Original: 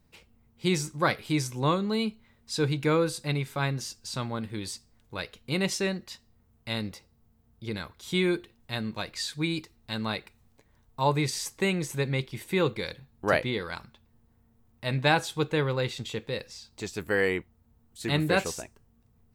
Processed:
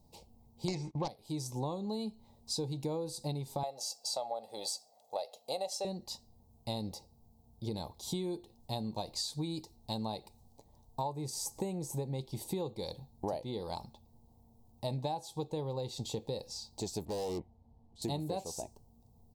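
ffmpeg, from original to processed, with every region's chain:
-filter_complex "[0:a]asettb=1/sr,asplit=3[a][b][c];[a]atrim=end=0.684[d];[b]atrim=start=0.68:end=1.08,asetpts=PTS-STARTPTS,afade=t=in:d=0.004:c=qsin,afade=t=out:st=0.396:d=0.004:c=qsin,agate=range=-21dB:threshold=-44dB:ratio=16:release=100:detection=peak,lowpass=f=2.2k:t=q:w=5.3,aeval=exprs='0.447*sin(PI/2*2.82*val(0)/0.447)':c=same[e];[c]atrim=start=1.076[f];[d][e]acrossfade=d=0.004:c1=hsin:c2=qsin[g];[g][f]acrossfade=d=0.004:c1=qsin:c2=hsin,asettb=1/sr,asplit=3[h][i][j];[h]atrim=end=3.634[k];[i]atrim=start=3.63:end=5.85,asetpts=PTS-STARTPTS,afade=t=in:d=0.004:c=qsin,afade=t=out:st=2.216:d=0.004:c=qsin,highpass=f=600:t=q:w=2.1,aecho=1:1:1.5:0.54,atrim=end_sample=97902[l];[j]atrim=start=5.846[m];[k][l]acrossfade=d=0.004:c1=hsin:c2=qsin[n];[n][m]acrossfade=d=0.004:c1=qsin:c2=hsin,asettb=1/sr,asplit=3[o][p][q];[o]atrim=end=11.134[r];[p]atrim=start=11.13:end=12.15,asetpts=PTS-STARTPTS,afade=t=in:d=0.004:c=qsin,afade=t=out:st=1.016:d=0.004:c=qsin,equalizer=f=3.9k:t=o:w=1:g=-7,acompressor=mode=upward:threshold=-44dB:ratio=2.5:attack=3.2:release=140:knee=2.83:detection=peak[s];[q]atrim=start=12.146[t];[r][s]acrossfade=d=0.004:c1=hsin:c2=qsin[u];[u][t]acrossfade=d=0.004:c1=qsin:c2=hsin,asettb=1/sr,asplit=3[v][w][x];[v]atrim=end=17.054[y];[w]atrim=start=17.05:end=18.02,asetpts=PTS-STARTPTS,afade=t=in:d=0.004:c=qsin,afade=t=out:st=0.966:d=0.004:c=qsin,lowpass=2.8k,volume=32.5dB,asoftclip=hard,volume=-32.5dB[z];[x]atrim=start=18.016[aa];[y][z]acrossfade=d=0.004:c1=hsin:c2=qsin[ab];[ab][aa]acrossfade=d=0.004:c1=qsin:c2=hsin,firequalizer=gain_entry='entry(430,0);entry(840,8);entry(1400,-25);entry(4200,1)':delay=0.05:min_phase=1,acompressor=threshold=-34dB:ratio=16,volume=1dB"

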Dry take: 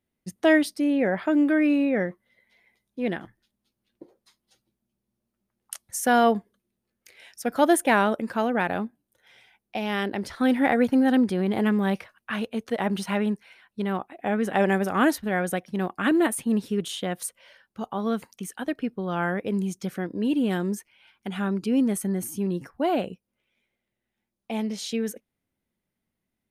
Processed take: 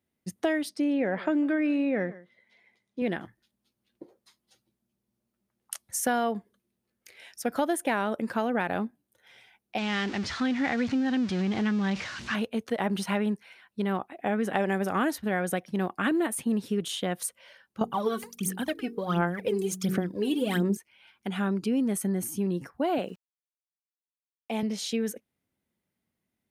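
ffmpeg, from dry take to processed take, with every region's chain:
-filter_complex "[0:a]asettb=1/sr,asplit=3[a][b][c];[a]atrim=end=0.694[d];[b]atrim=start=0.69:end=3.02,asetpts=PTS-STARTPTS,afade=t=in:d=0.004:c=qsin,afade=t=out:st=2.326:d=0.004:c=qsin,highpass=100,lowpass=7.4k,aecho=1:1:146:0.0841,atrim=end_sample=102753[e];[c]atrim=start=3.016[f];[d][e]acrossfade=d=0.004:c1=hsin:c2=qsin[g];[g][f]acrossfade=d=0.004:c1=qsin:c2=hsin,asettb=1/sr,asplit=3[h][i][j];[h]atrim=end=9.784[k];[i]atrim=start=9.78:end=12.35,asetpts=PTS-STARTPTS,afade=t=in:d=0.004:c=qsin,afade=t=out:st=2.566:d=0.004:c=qsin,aeval=exprs='val(0)+0.5*0.0316*sgn(val(0))':c=same,lowpass=f=6.3k:w=0.5412,lowpass=f=6.3k:w=1.3066,equalizer=f=530:t=o:w=1.9:g=-9[l];[j]atrim=start=12.346[m];[k][l]acrossfade=d=0.004:c1=hsin:c2=qsin[n];[n][m]acrossfade=d=0.004:c1=qsin:c2=hsin,asettb=1/sr,asplit=3[o][p][q];[o]atrim=end=17.814[r];[p]atrim=start=17.81:end=20.77,asetpts=PTS-STARTPTS,afade=t=in:d=0.004:c=qsin,afade=t=out:st=2.956:d=0.004:c=qsin,highshelf=f=6.1k:g=6.5,bandreject=f=46.8:t=h:w=4,bandreject=f=93.6:t=h:w=4,bandreject=f=140.4:t=h:w=4,bandreject=f=187.2:t=h:w=4,bandreject=f=234:t=h:w=4,bandreject=f=280.8:t=h:w=4,bandreject=f=327.6:t=h:w=4,bandreject=f=374.4:t=h:w=4,bandreject=f=421.2:t=h:w=4,bandreject=f=468:t=h:w=4,aphaser=in_gain=1:out_gain=1:delay=2.7:decay=0.75:speed=1.4:type=sinusoidal[s];[q]atrim=start=20.766[t];[r][s]acrossfade=d=0.004:c1=hsin:c2=qsin[u];[u][t]acrossfade=d=0.004:c1=qsin:c2=hsin,asettb=1/sr,asplit=3[v][w][x];[v]atrim=end=22.984[y];[w]atrim=start=22.98:end=24.63,asetpts=PTS-STARTPTS,afade=t=in:d=0.004:c=qsin,afade=t=out:st=1.646:d=0.004:c=qsin,highpass=190,aeval=exprs='val(0)*gte(abs(val(0)),0.00158)':c=same[z];[x]atrim=start=24.626[aa];[y][z]acrossfade=d=0.004:c1=hsin:c2=qsin[ab];[ab][aa]acrossfade=d=0.004:c1=qsin:c2=hsin,highpass=62,acompressor=threshold=-23dB:ratio=6"

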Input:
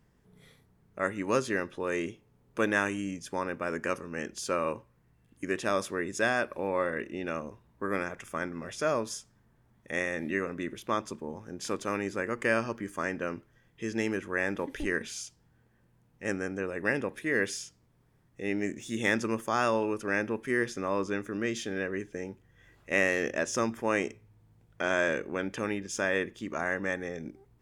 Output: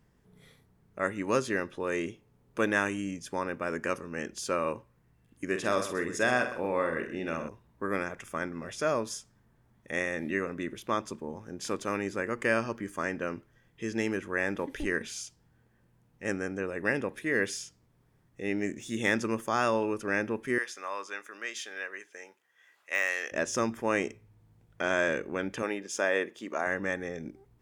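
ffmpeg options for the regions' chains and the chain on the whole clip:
-filter_complex "[0:a]asettb=1/sr,asplit=3[a][b][c];[a]atrim=end=5.474[d];[b]atrim=start=5.47:end=7.49,asetpts=PTS-STARTPTS,afade=t=in:d=0.004:c=qsin,afade=t=out:st=2.016:d=0.004:c=qsin,asplit=2[e][f];[f]adelay=48,volume=-8dB[g];[e][g]amix=inputs=2:normalize=0,atrim=end_sample=89082,aecho=1:1:128:0.237,atrim=end_sample=89082[h];[c]atrim=start=7.486[i];[d][h]acrossfade=d=0.004:c1=hsin:c2=qsin[j];[j][i]acrossfade=d=0.004:c1=qsin:c2=hsin,asettb=1/sr,asplit=3[k][l][m];[k]atrim=end=20.584[n];[l]atrim=start=20.58:end=23.32,asetpts=PTS-STARTPTS,afade=t=in:d=0.004:c=qsin,afade=t=out:st=2.736:d=0.004:c=qsin,highpass=910,deesser=0.7[o];[m]atrim=start=23.316[p];[n][o]acrossfade=d=0.004:c1=hsin:c2=qsin[q];[q][p]acrossfade=d=0.004:c1=qsin:c2=hsin,asettb=1/sr,asplit=3[r][s][t];[r]atrim=end=25.624[u];[s]atrim=start=25.62:end=26.67,asetpts=PTS-STARTPTS,afade=t=in:d=0.004:c=qsin,afade=t=out:st=1.046:d=0.004:c=qsin,highpass=280,equalizer=f=650:t=o:w=0.97:g=3.5[v];[t]atrim=start=26.666[w];[u][v]acrossfade=d=0.004:c1=hsin:c2=qsin[x];[x][w]acrossfade=d=0.004:c1=qsin:c2=hsin"

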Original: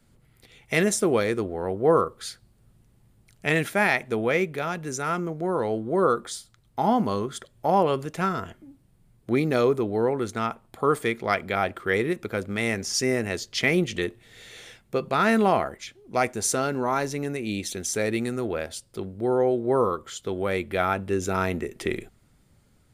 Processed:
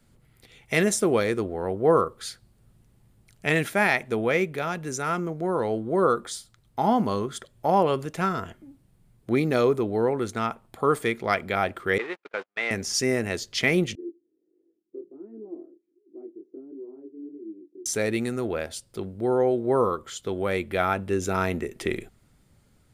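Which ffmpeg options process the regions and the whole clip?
-filter_complex "[0:a]asettb=1/sr,asplit=3[a][b][c];[a]atrim=end=11.984[d];[b]atrim=start=11.98:end=12.71,asetpts=PTS-STARTPTS,afade=t=in:d=0.004:c=qsin,afade=t=out:st=0.726:d=0.004:c=qsin,aeval=exprs='val(0)+0.5*0.0316*sgn(val(0))':c=same,highpass=640,lowpass=3k,agate=range=-49dB:threshold=-35dB:ratio=16:release=100:detection=peak[e];[c]atrim=start=12.706[f];[d][e]acrossfade=d=0.004:c1=hsin:c2=qsin[g];[g][f]acrossfade=d=0.004:c1=qsin:c2=hsin,asettb=1/sr,asplit=3[h][i][j];[h]atrim=end=13.954[k];[i]atrim=start=13.95:end=17.86,asetpts=PTS-STARTPTS,afade=t=in:d=0.004:c=qsin,afade=t=out:st=3.906:d=0.004:c=qsin,flanger=delay=18:depth=7.2:speed=1.4,asuperpass=centerf=330:order=4:qfactor=4.4[l];[j]atrim=start=17.856[m];[k][l]acrossfade=d=0.004:c1=hsin:c2=qsin[n];[n][m]acrossfade=d=0.004:c1=qsin:c2=hsin"

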